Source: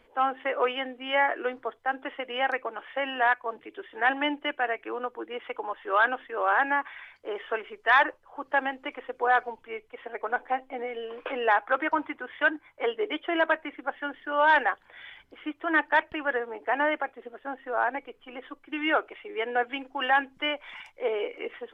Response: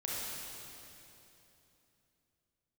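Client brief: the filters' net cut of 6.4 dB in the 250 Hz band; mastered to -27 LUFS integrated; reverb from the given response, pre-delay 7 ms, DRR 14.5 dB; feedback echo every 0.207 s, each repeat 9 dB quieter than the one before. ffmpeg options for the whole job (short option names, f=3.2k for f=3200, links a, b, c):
-filter_complex "[0:a]equalizer=f=250:t=o:g=-8.5,aecho=1:1:207|414|621|828:0.355|0.124|0.0435|0.0152,asplit=2[a][b];[1:a]atrim=start_sample=2205,adelay=7[c];[b][c]afir=irnorm=-1:irlink=0,volume=-18dB[d];[a][d]amix=inputs=2:normalize=0,volume=1dB"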